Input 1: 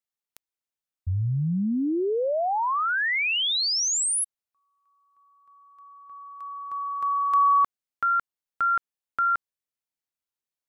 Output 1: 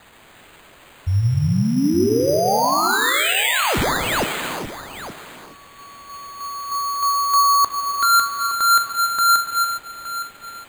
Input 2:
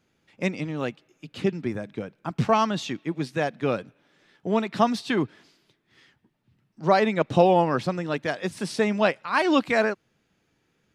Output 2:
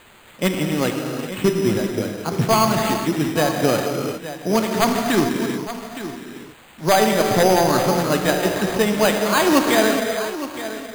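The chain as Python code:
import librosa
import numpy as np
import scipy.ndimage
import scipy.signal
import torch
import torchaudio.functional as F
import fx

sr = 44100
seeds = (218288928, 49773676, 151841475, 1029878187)

p1 = fx.peak_eq(x, sr, hz=7800.0, db=-12.0, octaves=0.3)
p2 = fx.rider(p1, sr, range_db=4, speed_s=0.5)
p3 = p1 + F.gain(torch.from_numpy(p2), 0.5).numpy()
p4 = fx.quant_dither(p3, sr, seeds[0], bits=8, dither='triangular')
p5 = 10.0 ** (-6.0 / 20.0) * (np.abs((p4 / 10.0 ** (-6.0 / 20.0) + 3.0) % 4.0 - 2.0) - 1.0)
p6 = p5 + 10.0 ** (-12.5 / 20.0) * np.pad(p5, (int(867 * sr / 1000.0), 0))[:len(p5)]
p7 = fx.rev_gated(p6, sr, seeds[1], gate_ms=450, shape='flat', drr_db=2.0)
p8 = np.repeat(p7[::8], 8)[:len(p7)]
y = F.gain(torch.from_numpy(p8), -1.5).numpy()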